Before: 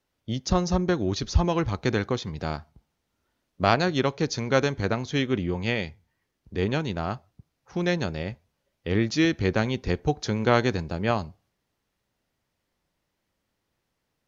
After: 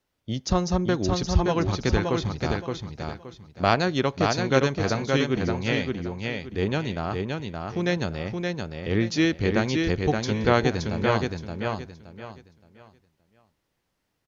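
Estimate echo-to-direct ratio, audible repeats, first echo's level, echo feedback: −3.5 dB, 3, −4.0 dB, 27%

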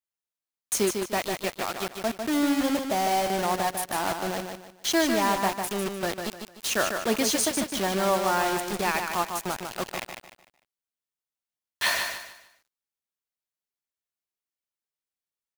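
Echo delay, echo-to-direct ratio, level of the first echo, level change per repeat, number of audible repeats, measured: 150 ms, −5.5 dB, −6.0 dB, −10.0 dB, 3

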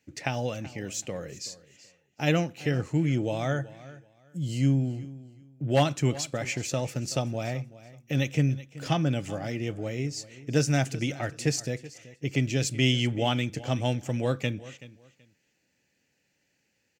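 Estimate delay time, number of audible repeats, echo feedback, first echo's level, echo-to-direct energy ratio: 379 ms, 2, 22%, −18.0 dB, −18.0 dB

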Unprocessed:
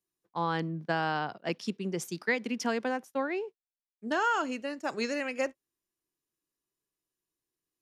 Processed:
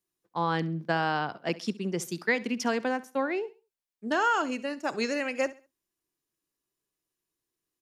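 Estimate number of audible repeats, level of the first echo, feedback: 2, −19.0 dB, 31%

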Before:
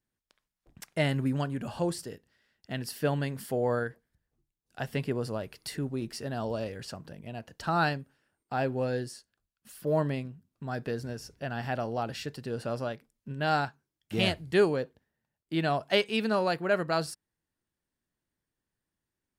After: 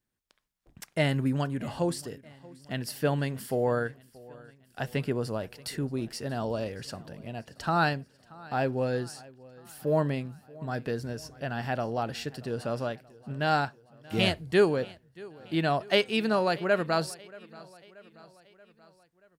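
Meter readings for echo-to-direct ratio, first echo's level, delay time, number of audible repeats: −20.5 dB, −22.0 dB, 631 ms, 3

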